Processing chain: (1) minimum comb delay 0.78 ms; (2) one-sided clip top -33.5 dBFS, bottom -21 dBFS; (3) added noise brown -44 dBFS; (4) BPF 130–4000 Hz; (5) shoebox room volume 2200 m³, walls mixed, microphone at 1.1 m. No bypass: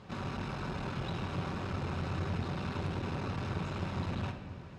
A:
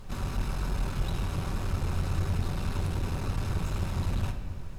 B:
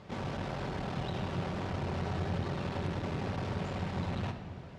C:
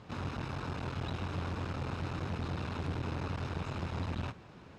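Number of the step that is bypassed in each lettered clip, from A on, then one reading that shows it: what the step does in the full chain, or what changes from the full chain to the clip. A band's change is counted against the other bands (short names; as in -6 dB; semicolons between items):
4, 8 kHz band +11.0 dB; 1, 500 Hz band +2.5 dB; 5, echo-to-direct -5.0 dB to none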